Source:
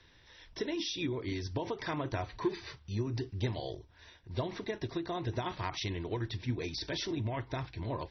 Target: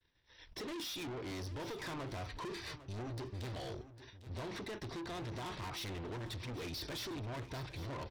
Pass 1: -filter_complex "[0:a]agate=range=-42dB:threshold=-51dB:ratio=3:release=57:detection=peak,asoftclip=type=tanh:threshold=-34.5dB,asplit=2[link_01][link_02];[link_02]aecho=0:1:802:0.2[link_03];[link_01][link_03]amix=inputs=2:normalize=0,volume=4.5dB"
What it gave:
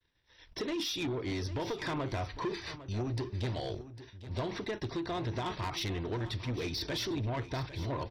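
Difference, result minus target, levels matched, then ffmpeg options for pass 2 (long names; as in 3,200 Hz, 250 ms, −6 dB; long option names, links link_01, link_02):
soft clipping: distortion −6 dB
-filter_complex "[0:a]agate=range=-42dB:threshold=-51dB:ratio=3:release=57:detection=peak,asoftclip=type=tanh:threshold=-45.5dB,asplit=2[link_01][link_02];[link_02]aecho=0:1:802:0.2[link_03];[link_01][link_03]amix=inputs=2:normalize=0,volume=4.5dB"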